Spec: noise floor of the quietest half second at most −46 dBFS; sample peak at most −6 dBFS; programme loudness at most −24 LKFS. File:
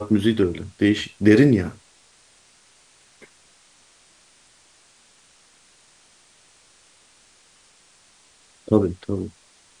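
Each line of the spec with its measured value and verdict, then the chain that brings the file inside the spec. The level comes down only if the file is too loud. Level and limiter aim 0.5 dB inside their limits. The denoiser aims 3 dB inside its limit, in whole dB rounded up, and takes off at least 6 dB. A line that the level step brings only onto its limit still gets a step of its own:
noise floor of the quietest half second −56 dBFS: in spec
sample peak −3.5 dBFS: out of spec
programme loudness −20.0 LKFS: out of spec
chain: level −4.5 dB

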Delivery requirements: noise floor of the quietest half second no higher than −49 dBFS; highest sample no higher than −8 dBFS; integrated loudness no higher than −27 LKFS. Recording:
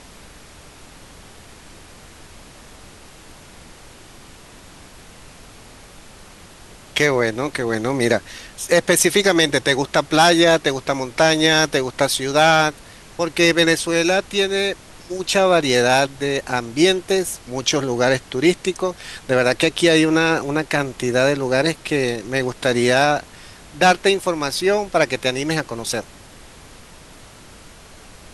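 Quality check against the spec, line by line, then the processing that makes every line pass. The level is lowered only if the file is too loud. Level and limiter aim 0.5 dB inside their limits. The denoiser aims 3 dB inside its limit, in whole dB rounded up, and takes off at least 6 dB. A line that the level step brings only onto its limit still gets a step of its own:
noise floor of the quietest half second −43 dBFS: out of spec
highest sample −3.0 dBFS: out of spec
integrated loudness −18.0 LKFS: out of spec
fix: level −9.5 dB

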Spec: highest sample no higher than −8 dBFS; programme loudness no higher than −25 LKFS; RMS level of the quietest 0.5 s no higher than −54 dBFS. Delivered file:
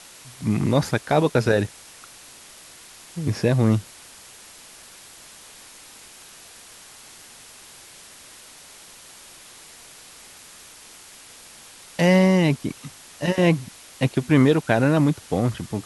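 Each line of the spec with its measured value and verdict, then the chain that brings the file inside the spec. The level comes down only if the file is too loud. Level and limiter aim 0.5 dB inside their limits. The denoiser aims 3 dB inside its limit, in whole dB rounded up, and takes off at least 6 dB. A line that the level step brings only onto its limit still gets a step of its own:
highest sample −3.0 dBFS: out of spec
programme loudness −21.0 LKFS: out of spec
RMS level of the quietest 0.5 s −46 dBFS: out of spec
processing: broadband denoise 7 dB, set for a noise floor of −46 dBFS
level −4.5 dB
brickwall limiter −8.5 dBFS

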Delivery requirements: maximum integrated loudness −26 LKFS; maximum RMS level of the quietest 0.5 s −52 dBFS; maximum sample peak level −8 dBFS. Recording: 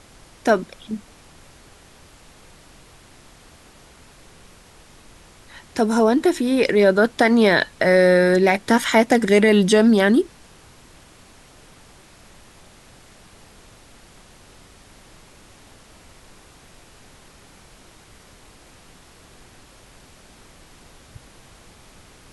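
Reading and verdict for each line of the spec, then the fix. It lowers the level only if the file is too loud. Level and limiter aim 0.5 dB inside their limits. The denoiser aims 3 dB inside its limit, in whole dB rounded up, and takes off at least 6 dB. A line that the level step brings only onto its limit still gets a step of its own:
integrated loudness −17.0 LKFS: out of spec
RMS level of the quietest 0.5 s −48 dBFS: out of spec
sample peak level −4.5 dBFS: out of spec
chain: level −9.5 dB

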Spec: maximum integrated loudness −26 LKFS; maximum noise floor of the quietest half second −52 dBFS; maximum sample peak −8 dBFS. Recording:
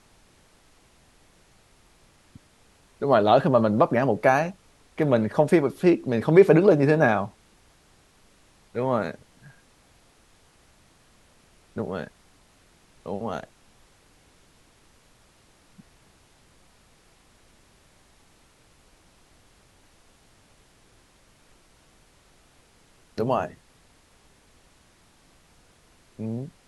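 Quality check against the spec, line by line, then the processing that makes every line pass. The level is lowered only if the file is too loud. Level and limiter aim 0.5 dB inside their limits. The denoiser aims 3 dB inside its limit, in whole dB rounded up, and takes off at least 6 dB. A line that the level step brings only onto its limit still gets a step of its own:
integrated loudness −22.5 LKFS: out of spec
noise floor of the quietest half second −59 dBFS: in spec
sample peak −3.0 dBFS: out of spec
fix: level −4 dB
brickwall limiter −8.5 dBFS

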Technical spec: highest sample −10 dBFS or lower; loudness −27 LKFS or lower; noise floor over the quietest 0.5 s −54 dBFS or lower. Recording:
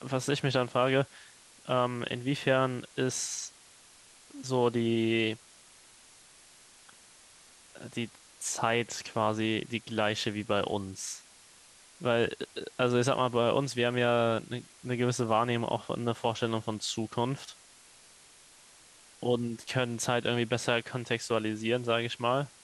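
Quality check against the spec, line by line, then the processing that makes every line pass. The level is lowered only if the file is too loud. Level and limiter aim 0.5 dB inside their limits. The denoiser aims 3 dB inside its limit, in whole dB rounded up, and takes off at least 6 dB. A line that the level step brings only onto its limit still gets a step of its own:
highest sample −11.5 dBFS: in spec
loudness −30.5 LKFS: in spec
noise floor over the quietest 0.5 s −57 dBFS: in spec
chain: no processing needed

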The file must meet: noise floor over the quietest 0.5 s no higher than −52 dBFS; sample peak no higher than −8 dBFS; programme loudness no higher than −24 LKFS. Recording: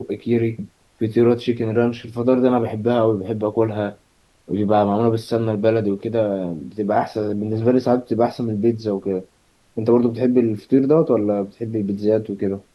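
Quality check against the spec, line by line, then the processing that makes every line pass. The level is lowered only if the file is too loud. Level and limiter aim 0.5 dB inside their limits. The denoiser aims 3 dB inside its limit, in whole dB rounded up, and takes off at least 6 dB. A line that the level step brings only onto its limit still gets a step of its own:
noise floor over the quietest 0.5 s −58 dBFS: in spec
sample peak −4.5 dBFS: out of spec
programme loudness −20.0 LKFS: out of spec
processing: level −4.5 dB

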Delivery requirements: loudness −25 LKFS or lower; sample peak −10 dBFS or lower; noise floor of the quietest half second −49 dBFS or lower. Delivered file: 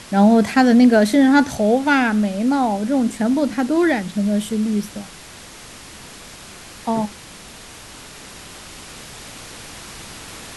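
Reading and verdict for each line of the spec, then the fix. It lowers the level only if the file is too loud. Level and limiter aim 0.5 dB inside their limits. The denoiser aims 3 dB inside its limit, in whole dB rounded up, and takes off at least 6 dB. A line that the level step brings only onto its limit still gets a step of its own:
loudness −17.0 LKFS: out of spec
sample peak −2.5 dBFS: out of spec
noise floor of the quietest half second −40 dBFS: out of spec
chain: broadband denoise 6 dB, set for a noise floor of −40 dBFS
level −8.5 dB

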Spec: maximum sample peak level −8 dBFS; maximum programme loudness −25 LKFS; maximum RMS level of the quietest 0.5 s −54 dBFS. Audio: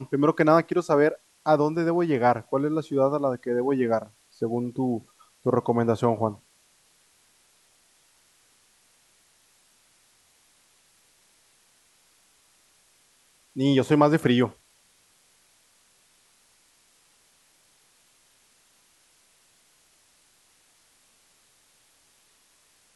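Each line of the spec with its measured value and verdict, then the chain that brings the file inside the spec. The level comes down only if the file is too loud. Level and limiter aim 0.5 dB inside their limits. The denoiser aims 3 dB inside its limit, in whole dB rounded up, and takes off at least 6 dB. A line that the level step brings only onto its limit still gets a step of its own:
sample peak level −4.5 dBFS: out of spec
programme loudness −24.0 LKFS: out of spec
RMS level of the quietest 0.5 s −62 dBFS: in spec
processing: level −1.5 dB
brickwall limiter −8.5 dBFS

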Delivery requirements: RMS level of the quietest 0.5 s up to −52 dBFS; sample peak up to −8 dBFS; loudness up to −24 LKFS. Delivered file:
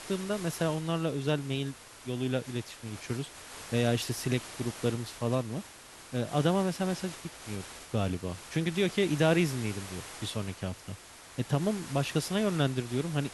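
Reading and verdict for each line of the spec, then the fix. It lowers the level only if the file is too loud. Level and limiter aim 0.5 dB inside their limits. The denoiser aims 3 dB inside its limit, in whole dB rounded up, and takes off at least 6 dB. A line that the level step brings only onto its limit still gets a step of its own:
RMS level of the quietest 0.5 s −50 dBFS: out of spec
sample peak −13.5 dBFS: in spec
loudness −32.0 LKFS: in spec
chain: broadband denoise 6 dB, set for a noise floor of −50 dBFS

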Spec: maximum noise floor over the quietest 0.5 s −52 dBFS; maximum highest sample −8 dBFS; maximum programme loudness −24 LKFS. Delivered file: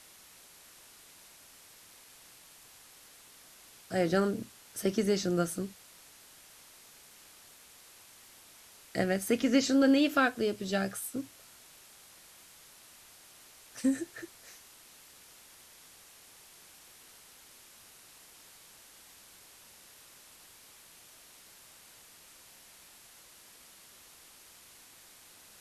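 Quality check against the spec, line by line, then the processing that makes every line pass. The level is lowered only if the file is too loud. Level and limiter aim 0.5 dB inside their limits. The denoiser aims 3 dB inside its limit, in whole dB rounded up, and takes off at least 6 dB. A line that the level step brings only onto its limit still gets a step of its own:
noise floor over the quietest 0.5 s −56 dBFS: in spec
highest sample −13.5 dBFS: in spec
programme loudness −30.0 LKFS: in spec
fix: no processing needed

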